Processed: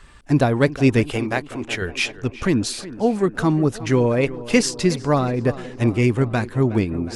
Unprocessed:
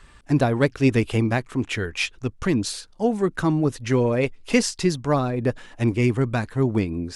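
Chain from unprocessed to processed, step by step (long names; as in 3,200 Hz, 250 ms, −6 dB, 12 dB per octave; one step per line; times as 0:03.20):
0:01.11–0:01.82: parametric band 120 Hz −9 dB 2.5 octaves
on a send: tape delay 365 ms, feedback 75%, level −15 dB, low-pass 2,700 Hz
on the sum: level +2.5 dB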